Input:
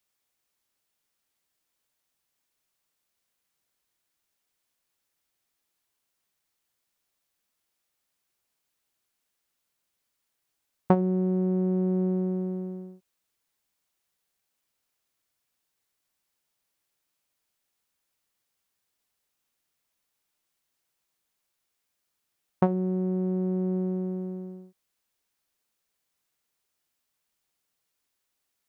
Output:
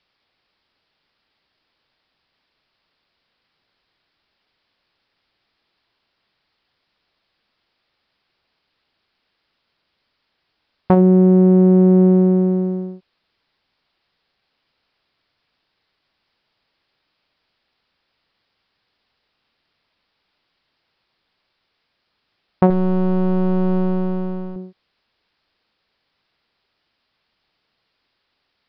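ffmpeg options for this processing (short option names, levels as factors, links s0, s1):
-filter_complex "[0:a]asettb=1/sr,asplit=3[s0][s1][s2];[s0]atrim=end=22.704[s3];[s1]atrim=start=22.7:end=24.56,asetpts=PTS-STARTPTS,afade=t=in:d=0.004:c=qsin,afade=t=out:st=1.856:d=0.004:c=qsin,aeval=exprs='if(lt(val(0),0),0.251*val(0),val(0))':c=same[s4];[s2]atrim=start=24.556[s5];[s3][s4]acrossfade=d=0.004:c1=hsin:c2=qsin[s6];[s6][s5]acrossfade=d=0.004:c1=qsin:c2=hsin,aresample=11025,aresample=44100,alimiter=level_in=5.62:limit=0.891:release=50:level=0:latency=1,volume=0.891"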